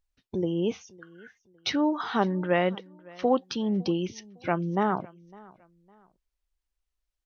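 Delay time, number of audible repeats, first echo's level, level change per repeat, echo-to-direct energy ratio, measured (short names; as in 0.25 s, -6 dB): 0.557 s, 2, -23.5 dB, -10.0 dB, -23.0 dB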